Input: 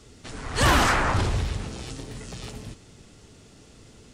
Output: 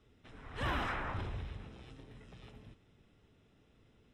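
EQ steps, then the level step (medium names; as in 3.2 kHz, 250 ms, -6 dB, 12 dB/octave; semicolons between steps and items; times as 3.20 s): Butterworth band-stop 4.5 kHz, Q 6.5; distance through air 430 m; pre-emphasis filter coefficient 0.8; -1.5 dB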